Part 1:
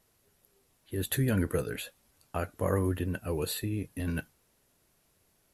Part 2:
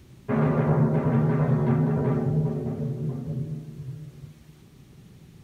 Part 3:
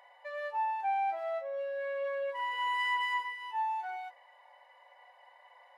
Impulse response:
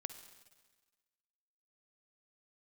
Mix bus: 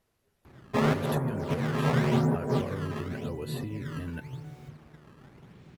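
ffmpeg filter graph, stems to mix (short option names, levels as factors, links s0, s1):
-filter_complex "[0:a]highshelf=f=5500:g=-11,acompressor=threshold=0.0355:ratio=6,volume=0.708,asplit=2[s0][s1];[1:a]acrusher=samples=17:mix=1:aa=0.000001:lfo=1:lforange=27.2:lforate=0.91,asplit=2[s2][s3];[s3]highpass=f=720:p=1,volume=2.82,asoftclip=type=tanh:threshold=0.335[s4];[s2][s4]amix=inputs=2:normalize=0,lowpass=f=1300:p=1,volume=0.501,adelay=450,volume=1.12[s5];[2:a]acrusher=bits=6:mix=0:aa=0.000001,acompressor=threshold=0.0112:ratio=6,adelay=600,volume=0.126[s6];[s1]apad=whole_len=259334[s7];[s5][s7]sidechaincompress=threshold=0.00891:ratio=10:attack=10:release=147[s8];[s0][s8][s6]amix=inputs=3:normalize=0"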